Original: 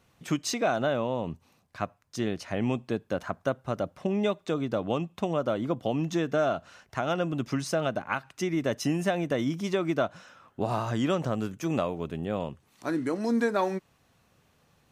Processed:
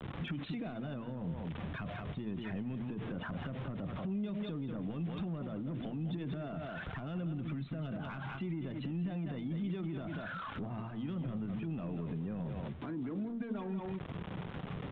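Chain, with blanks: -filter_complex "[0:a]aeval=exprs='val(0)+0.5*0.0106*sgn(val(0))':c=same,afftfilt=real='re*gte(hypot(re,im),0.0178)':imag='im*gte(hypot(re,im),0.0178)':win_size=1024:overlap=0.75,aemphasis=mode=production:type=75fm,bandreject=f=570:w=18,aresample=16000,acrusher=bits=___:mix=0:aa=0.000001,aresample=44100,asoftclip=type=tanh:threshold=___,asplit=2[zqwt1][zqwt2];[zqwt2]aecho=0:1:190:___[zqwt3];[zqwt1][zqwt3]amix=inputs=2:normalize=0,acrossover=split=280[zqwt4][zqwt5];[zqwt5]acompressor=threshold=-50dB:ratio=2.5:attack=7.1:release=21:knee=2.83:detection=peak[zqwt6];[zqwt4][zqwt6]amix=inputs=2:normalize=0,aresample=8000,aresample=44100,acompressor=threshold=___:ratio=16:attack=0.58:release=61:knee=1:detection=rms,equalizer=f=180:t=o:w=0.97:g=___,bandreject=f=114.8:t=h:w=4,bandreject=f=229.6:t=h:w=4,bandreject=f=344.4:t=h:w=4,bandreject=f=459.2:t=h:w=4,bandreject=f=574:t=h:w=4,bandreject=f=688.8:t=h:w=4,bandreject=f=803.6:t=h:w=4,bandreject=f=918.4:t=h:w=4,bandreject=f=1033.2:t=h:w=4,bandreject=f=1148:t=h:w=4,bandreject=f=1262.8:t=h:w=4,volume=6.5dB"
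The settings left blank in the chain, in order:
7, -22.5dB, 0.266, -43dB, 5.5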